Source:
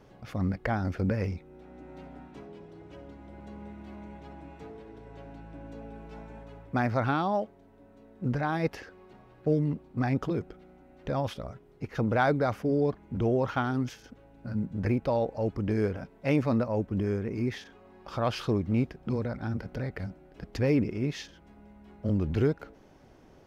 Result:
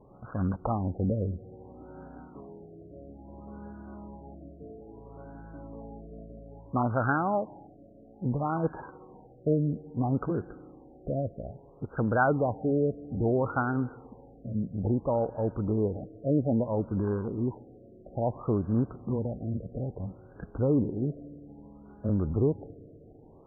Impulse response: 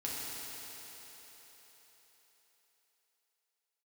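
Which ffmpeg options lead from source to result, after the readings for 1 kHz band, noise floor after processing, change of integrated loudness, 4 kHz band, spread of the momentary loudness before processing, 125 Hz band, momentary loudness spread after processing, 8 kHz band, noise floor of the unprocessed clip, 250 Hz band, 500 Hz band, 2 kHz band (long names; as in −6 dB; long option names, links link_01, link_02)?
+0.5 dB, −53 dBFS, 0.0 dB, below −35 dB, 20 LU, 0.0 dB, 21 LU, can't be measured, −56 dBFS, 0.0 dB, 0.0 dB, −1.0 dB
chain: -filter_complex "[0:a]highshelf=frequency=2100:width_type=q:width=3:gain=-6.5,acrusher=samples=13:mix=1:aa=0.000001:lfo=1:lforange=7.8:lforate=0.48,asplit=2[link_01][link_02];[1:a]atrim=start_sample=2205,asetrate=48510,aresample=44100,adelay=140[link_03];[link_02][link_03]afir=irnorm=-1:irlink=0,volume=-23dB[link_04];[link_01][link_04]amix=inputs=2:normalize=0,afftfilt=real='re*lt(b*sr/1024,690*pow(1700/690,0.5+0.5*sin(2*PI*0.6*pts/sr)))':imag='im*lt(b*sr/1024,690*pow(1700/690,0.5+0.5*sin(2*PI*0.6*pts/sr)))':win_size=1024:overlap=0.75"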